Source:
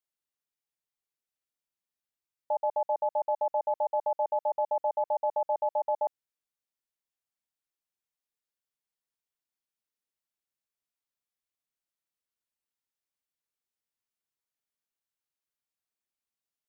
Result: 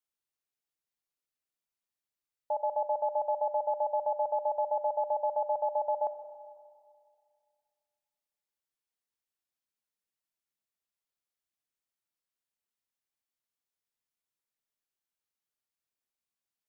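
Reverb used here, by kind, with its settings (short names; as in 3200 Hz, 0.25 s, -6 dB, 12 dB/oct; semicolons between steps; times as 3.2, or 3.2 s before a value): digital reverb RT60 2.2 s, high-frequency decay 0.95×, pre-delay 0 ms, DRR 9.5 dB; gain -2 dB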